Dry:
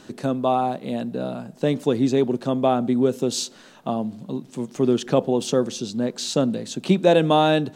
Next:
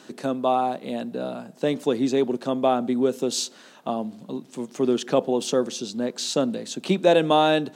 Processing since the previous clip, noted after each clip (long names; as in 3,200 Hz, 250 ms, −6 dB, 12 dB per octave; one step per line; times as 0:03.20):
high-pass filter 190 Hz 12 dB per octave
low-shelf EQ 440 Hz −2.5 dB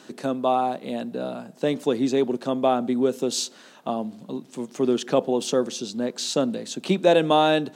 no processing that can be heard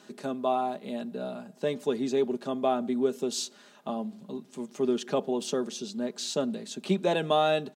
comb filter 4.9 ms, depth 52%
level −7 dB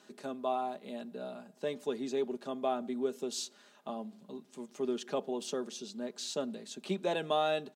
low-shelf EQ 130 Hz −12 dB
level −5.5 dB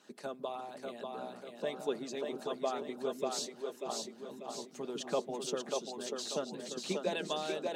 echo with a time of its own for lows and highs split 300 Hz, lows 157 ms, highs 590 ms, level −3 dB
harmonic and percussive parts rebalanced harmonic −13 dB
level +2.5 dB